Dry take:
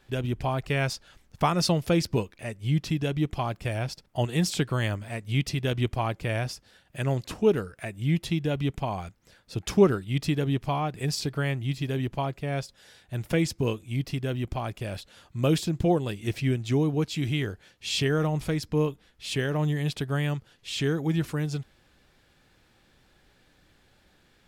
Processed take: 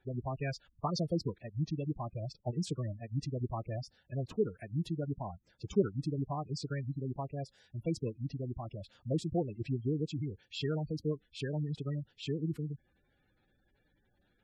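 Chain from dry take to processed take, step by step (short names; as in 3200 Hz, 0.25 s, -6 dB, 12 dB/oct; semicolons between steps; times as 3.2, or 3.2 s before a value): time stretch by phase-locked vocoder 0.59×; spectral gate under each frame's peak -15 dB strong; gain -8 dB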